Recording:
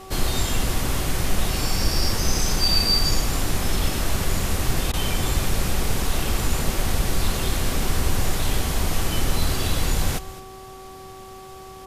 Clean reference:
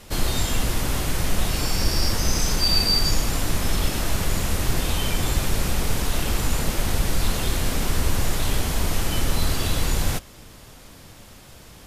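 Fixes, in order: de-hum 380.5 Hz, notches 3; interpolate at 4.92, 14 ms; inverse comb 0.213 s -16 dB

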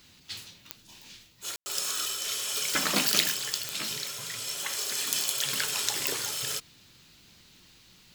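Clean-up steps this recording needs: de-click; room tone fill 1.56–1.66

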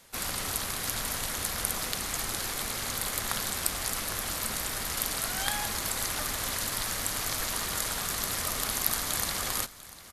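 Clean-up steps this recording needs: de-click; inverse comb 0.695 s -17.5 dB

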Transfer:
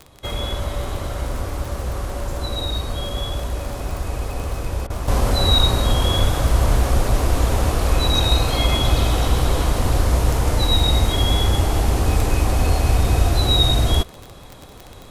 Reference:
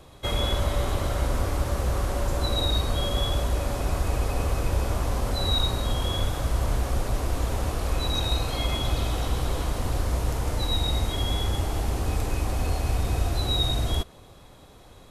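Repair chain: de-click; interpolate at 4.87, 29 ms; gain correction -8.5 dB, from 5.08

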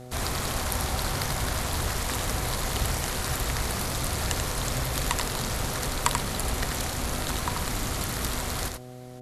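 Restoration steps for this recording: de-hum 125 Hz, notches 6; inverse comb 87 ms -5.5 dB

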